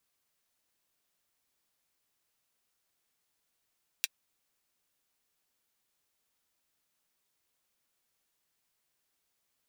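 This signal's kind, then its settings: closed hi-hat, high-pass 2500 Hz, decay 0.04 s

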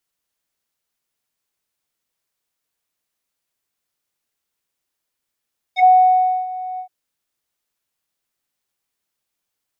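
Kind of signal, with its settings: synth note square F#5 12 dB/oct, low-pass 860 Hz, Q 5.2, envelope 2.5 oct, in 0.07 s, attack 45 ms, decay 0.66 s, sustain -18.5 dB, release 0.09 s, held 1.03 s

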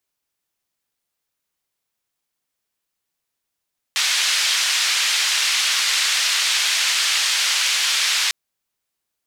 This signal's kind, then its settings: noise band 1900–5000 Hz, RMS -19.5 dBFS 4.35 s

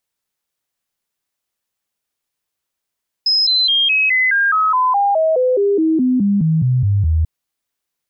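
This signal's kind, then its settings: stepped sine 5110 Hz down, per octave 3, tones 19, 0.21 s, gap 0.00 s -11.5 dBFS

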